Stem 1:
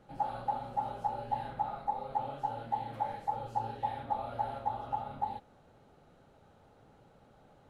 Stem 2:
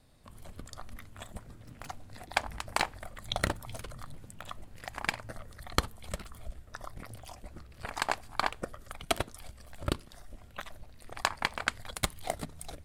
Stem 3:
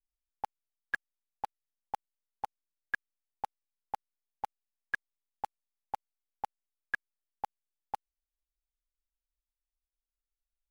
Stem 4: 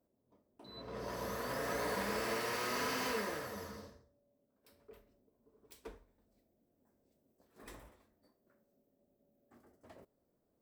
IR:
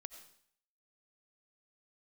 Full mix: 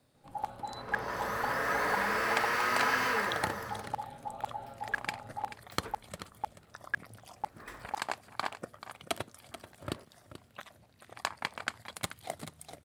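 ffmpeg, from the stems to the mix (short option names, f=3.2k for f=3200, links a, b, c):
-filter_complex "[0:a]adelay=150,volume=-7dB[a];[1:a]highpass=f=95:w=0.5412,highpass=f=95:w=1.3066,volume=-5dB,asplit=2[b][c];[c]volume=-12.5dB[d];[2:a]volume=0.5dB[e];[3:a]equalizer=f=1.5k:t=o:w=1.6:g=12,volume=0dB[f];[d]aecho=0:1:434:1[g];[a][b][e][f][g]amix=inputs=5:normalize=0"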